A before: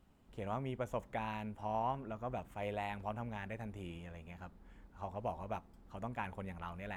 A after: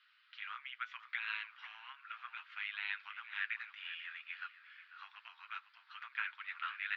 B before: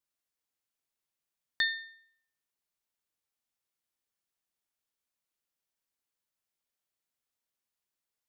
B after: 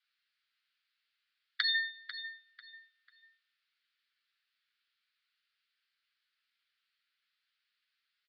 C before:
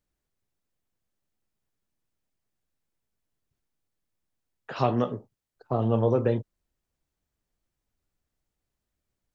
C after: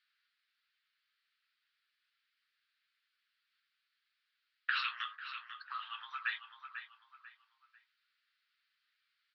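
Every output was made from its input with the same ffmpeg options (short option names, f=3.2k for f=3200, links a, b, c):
-filter_complex "[0:a]afftfilt=real='re*lt(hypot(re,im),0.158)':imag='im*lt(hypot(re,im),0.158)':win_size=1024:overlap=0.75,flanger=delay=7.4:depth=1.4:regen=-30:speed=0.48:shape=sinusoidal,asplit=2[a][b];[b]adelay=494,lowpass=f=3.5k:p=1,volume=-13.5dB,asplit=2[c][d];[d]adelay=494,lowpass=f=3.5k:p=1,volume=0.35,asplit=2[e][f];[f]adelay=494,lowpass=f=3.5k:p=1,volume=0.35[g];[c][e][g]amix=inputs=3:normalize=0[h];[a][h]amix=inputs=2:normalize=0,acompressor=threshold=-43dB:ratio=6,asuperpass=centerf=2500:order=12:qfactor=0.74,volume=16.5dB"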